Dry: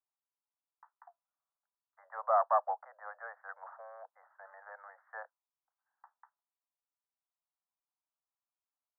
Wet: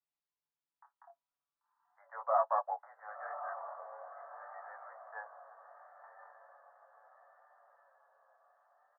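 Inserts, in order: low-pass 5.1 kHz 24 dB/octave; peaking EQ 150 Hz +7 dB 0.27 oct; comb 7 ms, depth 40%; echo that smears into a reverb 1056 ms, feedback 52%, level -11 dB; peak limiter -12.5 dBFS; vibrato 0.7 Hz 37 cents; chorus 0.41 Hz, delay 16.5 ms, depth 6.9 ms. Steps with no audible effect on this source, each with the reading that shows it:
low-pass 5.1 kHz: input has nothing above 1.9 kHz; peaking EQ 150 Hz: input has nothing below 430 Hz; peak limiter -12.5 dBFS: peak at its input -16.5 dBFS

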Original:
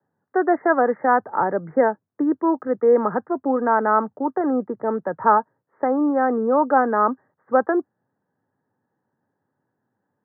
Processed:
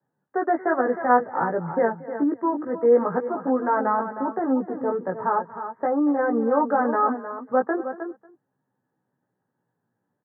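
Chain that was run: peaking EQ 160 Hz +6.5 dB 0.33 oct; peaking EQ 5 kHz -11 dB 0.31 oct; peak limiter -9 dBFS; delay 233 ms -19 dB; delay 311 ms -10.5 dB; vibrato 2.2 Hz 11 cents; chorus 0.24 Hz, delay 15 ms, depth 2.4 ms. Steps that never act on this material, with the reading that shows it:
peaking EQ 5 kHz: input has nothing above 1.9 kHz

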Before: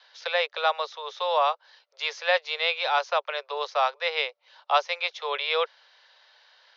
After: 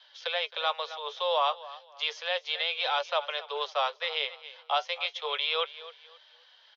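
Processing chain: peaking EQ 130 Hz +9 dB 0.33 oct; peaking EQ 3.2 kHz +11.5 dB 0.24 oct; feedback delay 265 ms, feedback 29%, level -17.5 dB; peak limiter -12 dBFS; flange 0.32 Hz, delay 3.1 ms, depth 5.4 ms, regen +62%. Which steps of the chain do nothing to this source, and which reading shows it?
peaking EQ 130 Hz: input has nothing below 380 Hz

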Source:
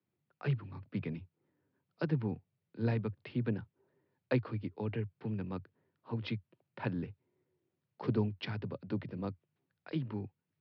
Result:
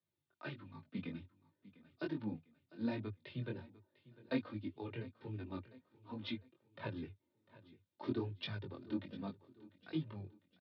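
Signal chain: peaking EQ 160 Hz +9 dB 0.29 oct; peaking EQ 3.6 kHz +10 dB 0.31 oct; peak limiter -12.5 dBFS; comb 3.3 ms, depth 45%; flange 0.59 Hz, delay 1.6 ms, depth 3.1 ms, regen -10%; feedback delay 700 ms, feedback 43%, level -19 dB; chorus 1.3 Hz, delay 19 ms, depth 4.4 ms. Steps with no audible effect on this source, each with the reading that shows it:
peak limiter -12.5 dBFS: peak at its input -15.0 dBFS

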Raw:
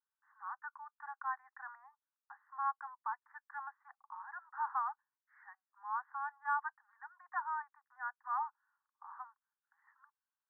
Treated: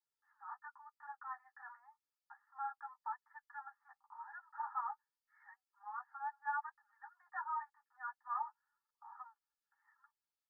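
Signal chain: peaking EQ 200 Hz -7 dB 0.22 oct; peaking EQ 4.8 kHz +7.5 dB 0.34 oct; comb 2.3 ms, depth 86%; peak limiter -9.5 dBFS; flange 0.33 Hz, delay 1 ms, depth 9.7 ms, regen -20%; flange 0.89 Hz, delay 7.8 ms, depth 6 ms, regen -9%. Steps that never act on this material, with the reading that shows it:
peaking EQ 200 Hz: input has nothing below 680 Hz; peaking EQ 4.8 kHz: input has nothing above 1.9 kHz; peak limiter -9.5 dBFS: peak at its input -21.5 dBFS

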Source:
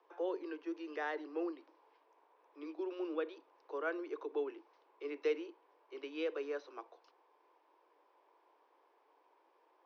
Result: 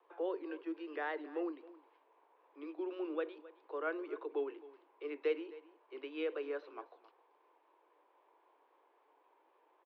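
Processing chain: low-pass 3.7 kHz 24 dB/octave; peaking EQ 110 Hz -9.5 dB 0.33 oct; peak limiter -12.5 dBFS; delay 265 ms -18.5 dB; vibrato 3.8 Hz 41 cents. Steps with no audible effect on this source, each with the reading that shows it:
peaking EQ 110 Hz: input has nothing below 250 Hz; peak limiter -12.5 dBFS: peak at its input -24.0 dBFS

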